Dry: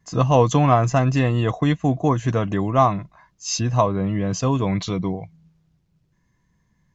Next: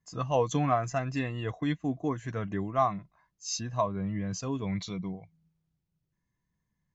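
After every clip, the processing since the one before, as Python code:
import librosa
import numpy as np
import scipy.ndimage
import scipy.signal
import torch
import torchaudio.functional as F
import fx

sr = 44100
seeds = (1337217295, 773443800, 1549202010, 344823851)

y = fx.noise_reduce_blind(x, sr, reduce_db=7)
y = F.gain(torch.from_numpy(y), -8.5).numpy()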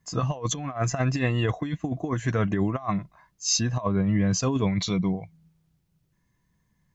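y = fx.over_compress(x, sr, threshold_db=-32.0, ratio=-0.5)
y = F.gain(torch.from_numpy(y), 8.0).numpy()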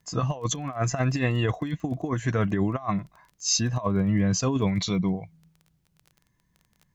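y = fx.dmg_crackle(x, sr, seeds[0], per_s=19.0, level_db=-39.0)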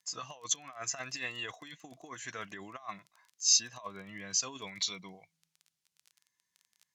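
y = fx.bandpass_q(x, sr, hz=6400.0, q=0.59)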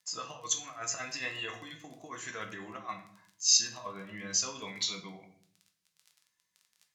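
y = fx.room_shoebox(x, sr, seeds[1], volume_m3=84.0, walls='mixed', distance_m=0.56)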